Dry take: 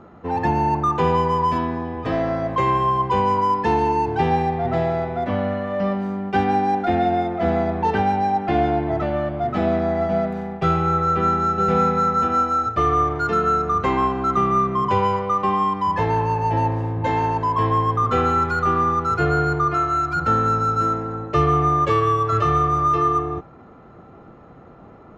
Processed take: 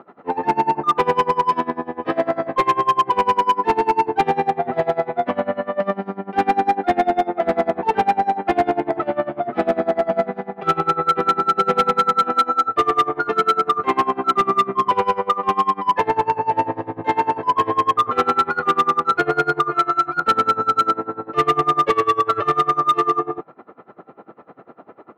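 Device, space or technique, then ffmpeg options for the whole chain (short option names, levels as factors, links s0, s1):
helicopter radio: -af "highpass=300,lowpass=2900,aeval=exprs='val(0)*pow(10,-23*(0.5-0.5*cos(2*PI*10*n/s))/20)':c=same,asoftclip=type=hard:threshold=0.119,volume=2.66"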